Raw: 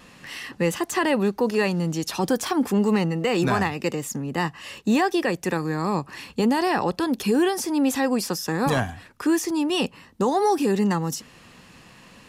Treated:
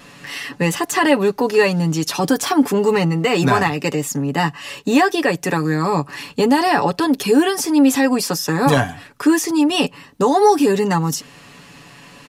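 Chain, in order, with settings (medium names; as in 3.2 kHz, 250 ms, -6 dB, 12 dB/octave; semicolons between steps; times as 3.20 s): bass shelf 79 Hz -7 dB; comb 7 ms; trim +5.5 dB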